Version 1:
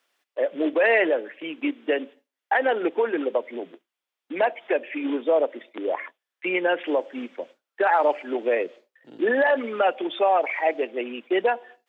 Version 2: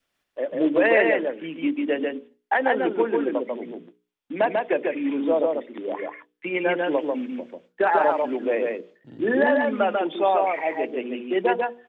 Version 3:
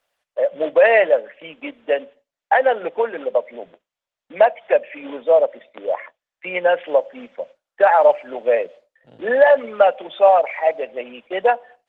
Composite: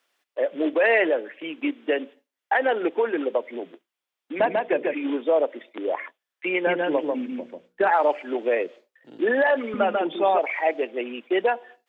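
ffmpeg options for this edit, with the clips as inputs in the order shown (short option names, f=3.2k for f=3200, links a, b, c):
-filter_complex "[1:a]asplit=3[a][b][c];[0:a]asplit=4[d][e][f][g];[d]atrim=end=4.402[h];[a]atrim=start=4.398:end=4.942[i];[e]atrim=start=4.938:end=6.672[j];[b]atrim=start=6.668:end=7.912[k];[f]atrim=start=7.908:end=9.742[l];[c]atrim=start=9.738:end=10.392[m];[g]atrim=start=10.388[n];[h][i]acrossfade=d=0.004:c1=hsin:c2=hsin[o];[o][j]acrossfade=d=0.004:c1=hsin:c2=hsin[p];[p][k]acrossfade=d=0.004:c1=hsin:c2=hsin[q];[q][l]acrossfade=d=0.004:c1=hsin:c2=hsin[r];[r][m]acrossfade=d=0.004:c1=hsin:c2=hsin[s];[s][n]acrossfade=d=0.004:c1=hsin:c2=hsin"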